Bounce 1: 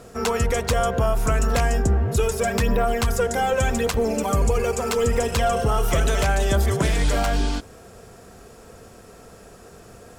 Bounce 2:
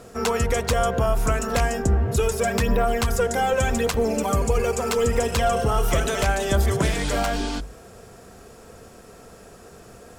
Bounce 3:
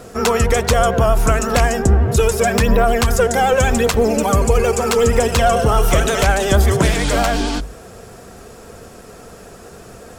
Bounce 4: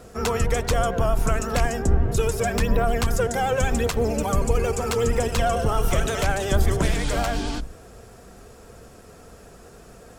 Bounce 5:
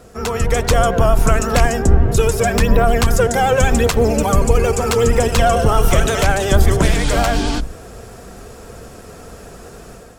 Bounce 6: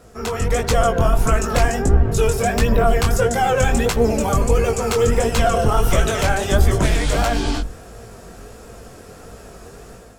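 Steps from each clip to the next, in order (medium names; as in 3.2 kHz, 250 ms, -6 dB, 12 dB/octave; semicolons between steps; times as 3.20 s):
hum notches 50/100/150 Hz
vibrato 11 Hz 50 cents; trim +7 dB
octave divider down 2 oct, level 0 dB; trim -8.5 dB
level rider gain up to 8 dB; trim +1.5 dB
chorus 1.5 Hz, delay 17 ms, depth 6.5 ms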